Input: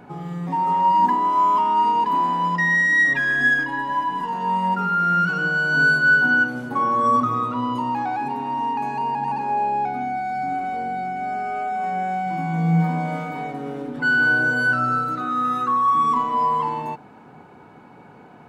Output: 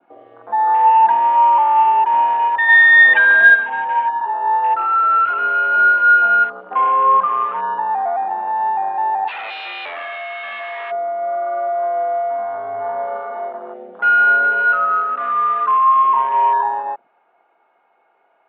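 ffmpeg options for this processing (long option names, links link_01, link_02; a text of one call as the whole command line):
ffmpeg -i in.wav -filter_complex "[0:a]afwtdn=0.0316,adynamicequalizer=threshold=0.0224:dfrequency=2100:dqfactor=2.1:tfrequency=2100:tqfactor=2.1:attack=5:release=100:ratio=0.375:range=2.5:mode=cutabove:tftype=bell,asplit=3[link_01][link_02][link_03];[link_01]afade=type=out:start_time=2.68:duration=0.02[link_04];[link_02]acontrast=61,afade=type=in:start_time=2.68:duration=0.02,afade=type=out:start_time=3.54:duration=0.02[link_05];[link_03]afade=type=in:start_time=3.54:duration=0.02[link_06];[link_04][link_05][link_06]amix=inputs=3:normalize=0,asplit=3[link_07][link_08][link_09];[link_07]afade=type=out:start_time=9.27:duration=0.02[link_10];[link_08]aeval=exprs='0.0376*(abs(mod(val(0)/0.0376+3,4)-2)-1)':channel_layout=same,afade=type=in:start_time=9.27:duration=0.02,afade=type=out:start_time=10.9:duration=0.02[link_11];[link_09]afade=type=in:start_time=10.9:duration=0.02[link_12];[link_10][link_11][link_12]amix=inputs=3:normalize=0,highpass=frequency=560:width_type=q:width=0.5412,highpass=frequency=560:width_type=q:width=1.307,lowpass=frequency=3400:width_type=q:width=0.5176,lowpass=frequency=3400:width_type=q:width=0.7071,lowpass=frequency=3400:width_type=q:width=1.932,afreqshift=-56,volume=6dB" out.wav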